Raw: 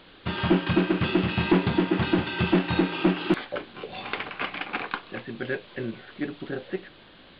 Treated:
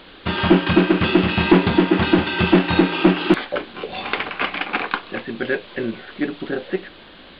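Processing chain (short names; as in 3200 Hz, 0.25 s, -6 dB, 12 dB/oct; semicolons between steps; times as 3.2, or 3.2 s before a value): bell 130 Hz -9.5 dB 0.41 oct; gain +8 dB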